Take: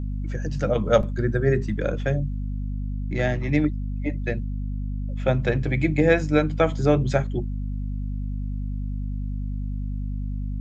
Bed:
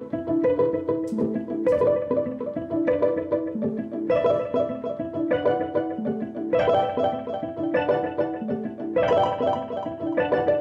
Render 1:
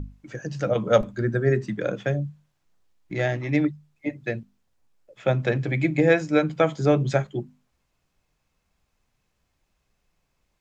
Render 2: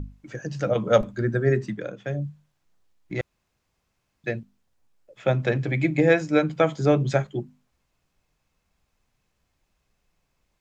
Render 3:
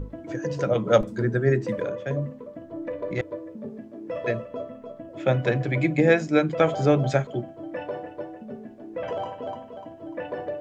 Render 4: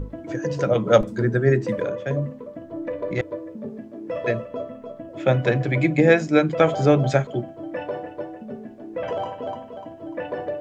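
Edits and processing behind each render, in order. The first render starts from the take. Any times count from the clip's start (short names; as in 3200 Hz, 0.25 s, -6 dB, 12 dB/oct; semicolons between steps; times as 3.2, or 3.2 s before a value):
notches 50/100/150/200/250 Hz
1.66–2.26 dip -9 dB, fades 0.24 s; 3.21–4.24 room tone
add bed -10.5 dB
gain +3 dB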